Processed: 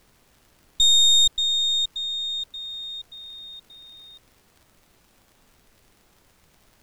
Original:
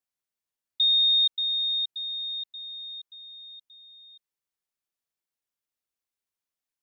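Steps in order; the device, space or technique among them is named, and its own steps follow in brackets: record under a worn stylus (tracing distortion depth 0.03 ms; crackle; pink noise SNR 34 dB); trim +4.5 dB

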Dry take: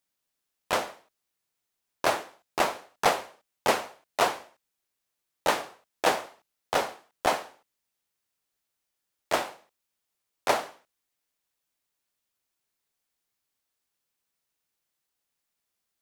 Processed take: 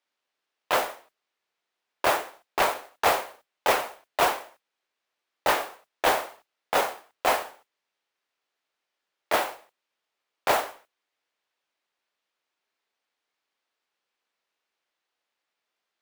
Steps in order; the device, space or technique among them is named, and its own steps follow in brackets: carbon microphone (band-pass 370–3600 Hz; saturation -21 dBFS, distortion -10 dB; modulation noise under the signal 12 dB); trim +6 dB

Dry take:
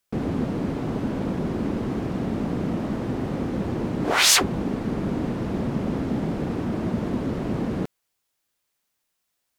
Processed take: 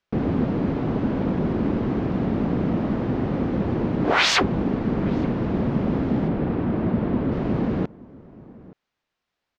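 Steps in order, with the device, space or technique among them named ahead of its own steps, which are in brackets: shout across a valley (distance through air 200 m; echo from a far wall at 150 m, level -21 dB); 6.28–7.32 s: Bessel low-pass 3.2 kHz, order 2; trim +3.5 dB

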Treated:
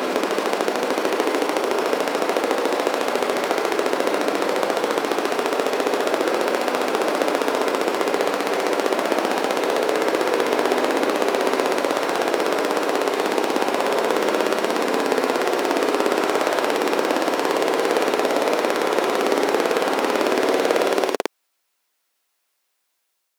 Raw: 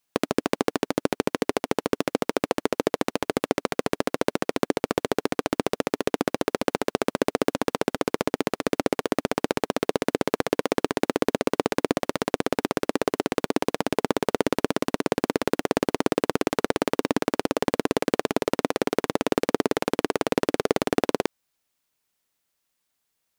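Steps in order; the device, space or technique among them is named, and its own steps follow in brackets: ghost voice (reverse; reverberation RT60 2.6 s, pre-delay 100 ms, DRR -4.5 dB; reverse; high-pass 390 Hz 12 dB/octave); trim +2 dB

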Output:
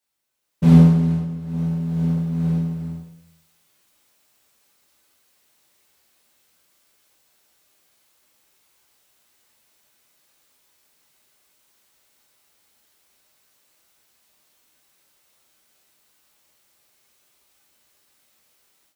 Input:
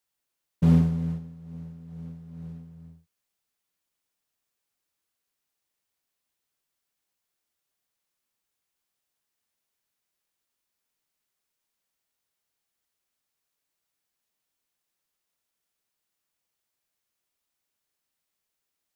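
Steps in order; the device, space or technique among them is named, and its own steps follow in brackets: far laptop microphone (reverberation RT60 0.70 s, pre-delay 5 ms, DRR -4.5 dB; high-pass 100 Hz 6 dB/octave; level rider gain up to 15 dB); trim -1 dB

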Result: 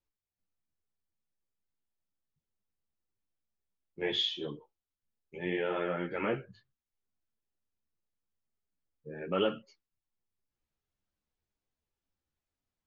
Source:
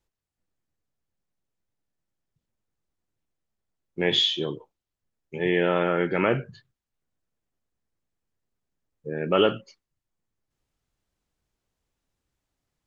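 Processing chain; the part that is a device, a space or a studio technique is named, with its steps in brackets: string-machine ensemble chorus (three-phase chorus; low-pass 6.3 kHz 12 dB/octave); trim -6.5 dB

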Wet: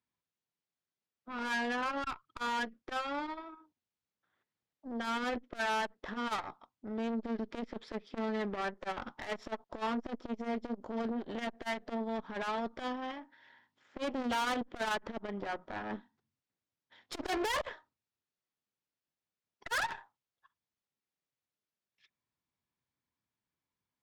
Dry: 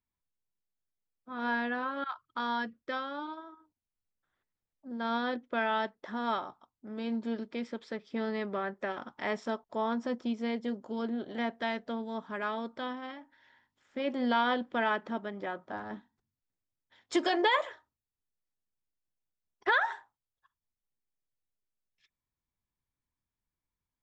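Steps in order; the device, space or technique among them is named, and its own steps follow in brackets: valve radio (band-pass 120–5300 Hz; valve stage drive 37 dB, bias 0.8; transformer saturation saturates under 260 Hz); trim +7.5 dB

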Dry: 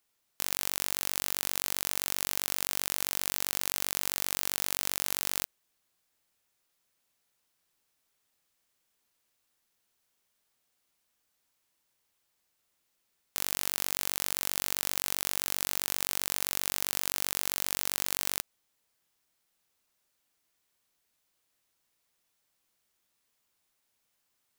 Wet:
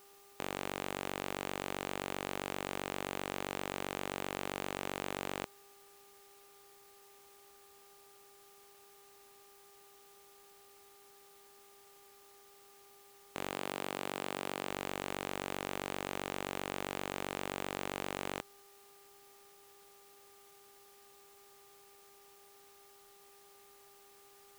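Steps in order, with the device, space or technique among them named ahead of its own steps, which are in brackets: 13.52–14.69 s: high-pass 110 Hz 12 dB/octave; aircraft radio (band-pass 340–2600 Hz; hard clipper -38 dBFS, distortion -3 dB; mains buzz 400 Hz, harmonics 3, -76 dBFS -4 dB/octave; white noise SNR 19 dB); trim +12 dB

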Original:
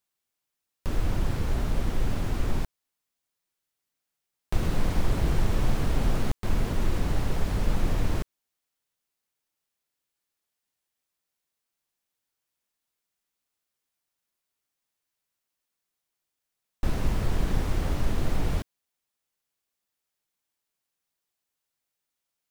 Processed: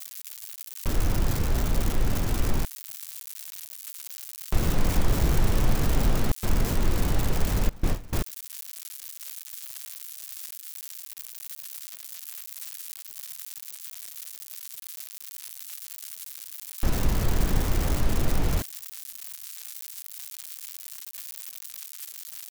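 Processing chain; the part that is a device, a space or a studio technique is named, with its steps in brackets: budget class-D amplifier (dead-time distortion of 0.17 ms; zero-crossing glitches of -18 dBFS); 7.69–8.13 s: gate with hold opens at -12 dBFS; trim +2 dB

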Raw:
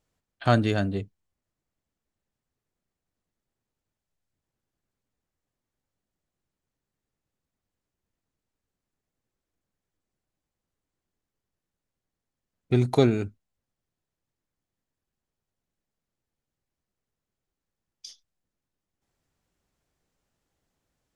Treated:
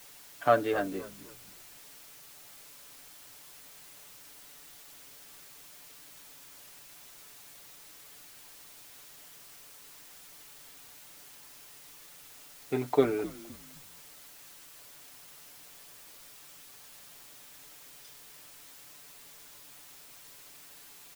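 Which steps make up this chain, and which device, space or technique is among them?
wax cylinder (band-pass 360–2000 Hz; wow and flutter; white noise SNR 12 dB); comb 6.9 ms; frequency-shifting echo 258 ms, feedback 34%, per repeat -84 Hz, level -17.5 dB; trim -2 dB

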